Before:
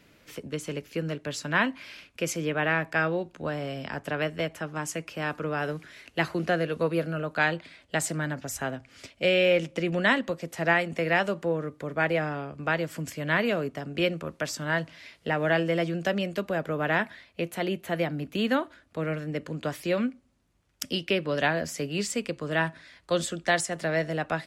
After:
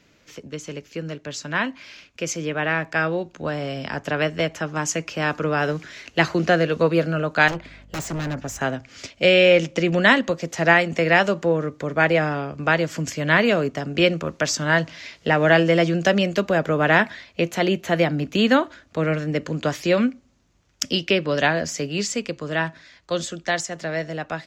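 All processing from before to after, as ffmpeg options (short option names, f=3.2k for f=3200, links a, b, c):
-filter_complex "[0:a]asettb=1/sr,asplit=3[a][b][c];[a]atrim=end=7.484[d];[b]atrim=start=7.48:end=8.61,asetpts=PTS-STARTPTS,afade=t=in:d=0.004:c=qsin,afade=t=out:st=1.126:d=0.004:c=qsin,aeval=exprs='0.0355*(abs(mod(val(0)/0.0355+3,4)-2)-1)':c=same,equalizer=f=4.9k:t=o:w=1.8:g=-9,aeval=exprs='val(0)+0.002*(sin(2*PI*50*n/s)+sin(2*PI*2*50*n/s)/2+sin(2*PI*3*50*n/s)/3+sin(2*PI*4*50*n/s)/4+sin(2*PI*5*50*n/s)/5)':c=same[e];[c]atrim=start=8.606[f];[d][e]acrossfade=d=0.004:c1=hsin:c2=qsin[g];[g][f]acrossfade=d=0.004:c1=qsin:c2=hsin,highshelf=f=7.9k:t=q:w=3:g=-6.5,dynaudnorm=f=550:g=13:m=11.5dB"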